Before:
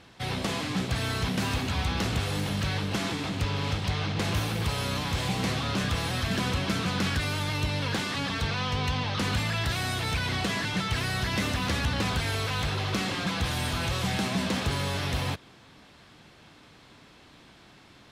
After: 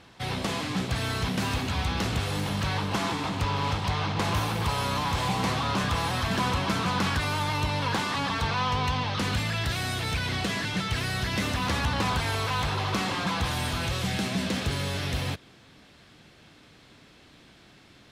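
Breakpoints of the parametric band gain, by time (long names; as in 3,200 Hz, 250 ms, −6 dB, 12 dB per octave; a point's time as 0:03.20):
parametric band 970 Hz 0.75 octaves
0:02.25 +2 dB
0:02.81 +9 dB
0:08.69 +9 dB
0:09.43 −1.5 dB
0:11.34 −1.5 dB
0:11.78 +7 dB
0:13.35 +7 dB
0:14.09 −4.5 dB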